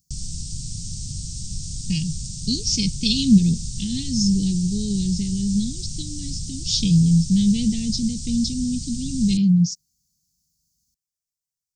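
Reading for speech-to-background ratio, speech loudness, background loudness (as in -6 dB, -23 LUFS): 10.0 dB, -21.5 LUFS, -31.5 LUFS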